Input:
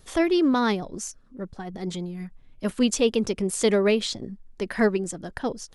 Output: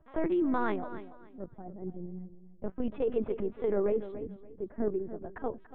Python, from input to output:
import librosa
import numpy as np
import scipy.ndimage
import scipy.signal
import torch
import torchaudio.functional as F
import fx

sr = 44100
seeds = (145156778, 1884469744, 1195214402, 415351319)

y = fx.wiener(x, sr, points=9)
y = fx.filter_lfo_lowpass(y, sr, shape='sine', hz=0.38, low_hz=430.0, high_hz=1700.0, q=0.72)
y = fx.lpc_vocoder(y, sr, seeds[0], excitation='pitch_kept', order=10)
y = fx.high_shelf(y, sr, hz=2300.0, db=-9.5, at=(1.9, 4.1))
y = fx.echo_feedback(y, sr, ms=286, feedback_pct=24, wet_db=-14.0)
y = fx.over_compress(y, sr, threshold_db=-20.0, ratio=-1.0)
y = fx.low_shelf(y, sr, hz=380.0, db=-7.0)
y = F.gain(torch.from_numpy(y), -2.5).numpy()